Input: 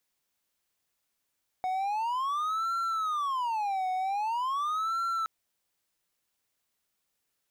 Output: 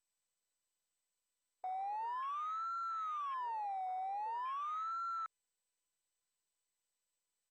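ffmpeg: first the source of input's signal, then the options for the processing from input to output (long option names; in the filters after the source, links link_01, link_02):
-f lavfi -i "aevalsrc='0.0531*(1-4*abs(mod((1051*t-309/(2*PI*0.44)*sin(2*PI*0.44*t))+0.25,1)-0.5))':duration=3.62:sample_rate=44100"
-af "aresample=16000,asoftclip=type=tanh:threshold=-39dB,aresample=44100,afwtdn=0.00501" -ar 32000 -c:a mp2 -b:a 64k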